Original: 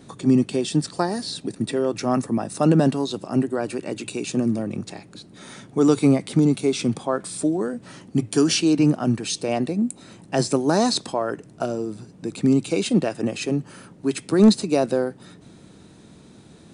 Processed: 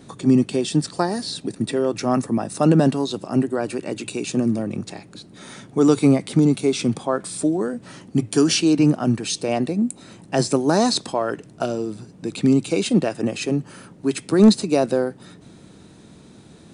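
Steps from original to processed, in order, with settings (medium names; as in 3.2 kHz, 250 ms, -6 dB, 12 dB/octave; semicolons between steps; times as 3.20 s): 11.14–12.51 s: dynamic bell 3.3 kHz, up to +6 dB, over -51 dBFS, Q 1.2; trim +1.5 dB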